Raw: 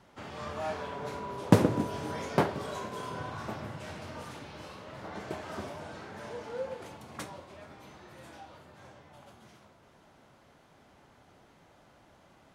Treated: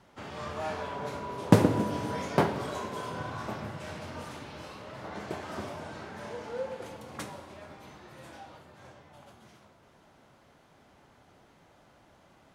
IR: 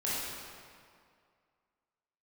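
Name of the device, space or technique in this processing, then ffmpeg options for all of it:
keyed gated reverb: -filter_complex "[0:a]asplit=3[link_01][link_02][link_03];[1:a]atrim=start_sample=2205[link_04];[link_02][link_04]afir=irnorm=-1:irlink=0[link_05];[link_03]apad=whole_len=553450[link_06];[link_05][link_06]sidechaingate=range=-33dB:threshold=-51dB:ratio=16:detection=peak,volume=-14.5dB[link_07];[link_01][link_07]amix=inputs=2:normalize=0"

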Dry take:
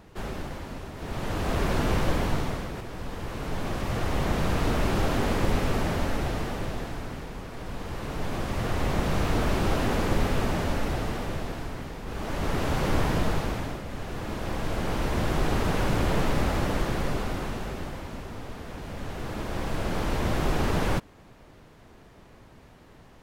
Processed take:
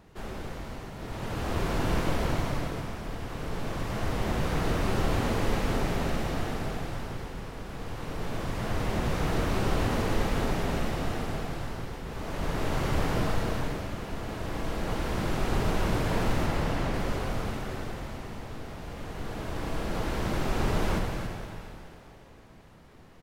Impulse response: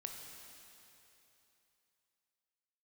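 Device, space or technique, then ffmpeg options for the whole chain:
cave: -filter_complex "[0:a]asettb=1/sr,asplit=3[link_01][link_02][link_03];[link_01]atrim=end=16.464[link_04];[link_02]atrim=start=16.46:end=16.94,asetpts=PTS-STARTPTS,afade=type=in:duration=0.004:curve=qsin,afade=type=out:start_time=0.476:duration=0.004:curve=qsin,highshelf=frequency=8200:gain=-11[link_05];[link_03]atrim=start=16.936[link_06];[link_04][link_05]acrossfade=duration=0.004:curve1=hsin:curve2=qsin[link_07];[link_07][link_06]acrossfade=duration=0.004:curve1=qsin:curve2=hsin,aecho=1:1:275:0.355[link_08];[1:a]atrim=start_sample=2205[link_09];[link_08][link_09]afir=irnorm=-1:irlink=0"

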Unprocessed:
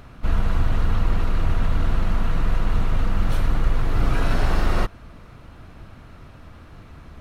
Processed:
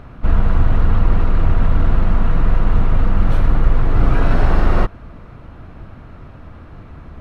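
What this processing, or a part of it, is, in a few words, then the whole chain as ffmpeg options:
through cloth: -af "highshelf=frequency=3300:gain=-16,volume=6.5dB"

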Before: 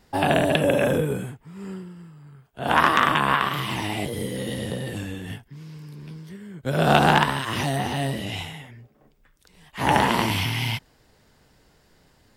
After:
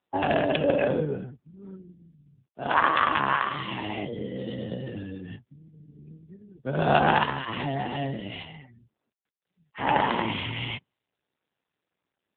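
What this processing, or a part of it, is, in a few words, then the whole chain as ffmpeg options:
mobile call with aggressive noise cancelling: -filter_complex "[0:a]asplit=3[link_01][link_02][link_03];[link_01]afade=type=out:start_time=4.53:duration=0.02[link_04];[link_02]lowshelf=frequency=64:gain=5.5,afade=type=in:start_time=4.53:duration=0.02,afade=type=out:start_time=5.4:duration=0.02[link_05];[link_03]afade=type=in:start_time=5.4:duration=0.02[link_06];[link_04][link_05][link_06]amix=inputs=3:normalize=0,highpass=frequency=150:poles=1,afftdn=noise_reduction=34:noise_floor=-41,volume=-2dB" -ar 8000 -c:a libopencore_amrnb -b:a 7950

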